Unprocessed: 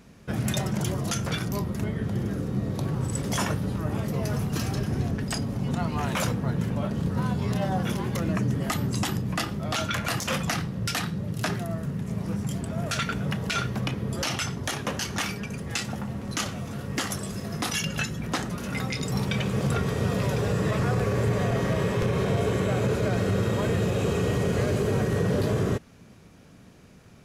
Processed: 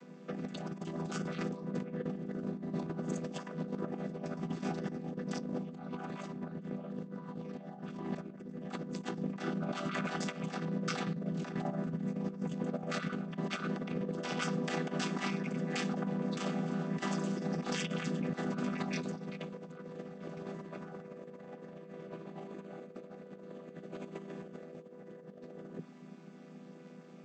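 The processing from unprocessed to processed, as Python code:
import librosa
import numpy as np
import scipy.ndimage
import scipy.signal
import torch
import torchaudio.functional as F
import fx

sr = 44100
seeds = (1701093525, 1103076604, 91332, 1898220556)

y = fx.chord_vocoder(x, sr, chord='minor triad', root=52)
y = scipy.signal.sosfilt(scipy.signal.butter(2, 260.0, 'highpass', fs=sr, output='sos'), y)
y = fx.over_compress(y, sr, threshold_db=-38.0, ratio=-0.5)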